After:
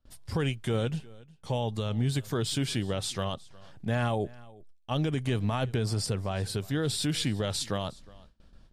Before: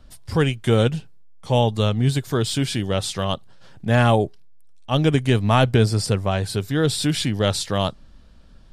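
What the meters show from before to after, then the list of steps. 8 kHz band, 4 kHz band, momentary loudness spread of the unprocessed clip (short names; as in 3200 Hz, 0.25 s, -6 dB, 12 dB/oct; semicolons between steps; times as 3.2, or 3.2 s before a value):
-6.5 dB, -8.0 dB, 8 LU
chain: gate with hold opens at -39 dBFS; limiter -14 dBFS, peak gain reduction 9 dB; on a send: echo 0.361 s -22.5 dB; on the sum: gain -6 dB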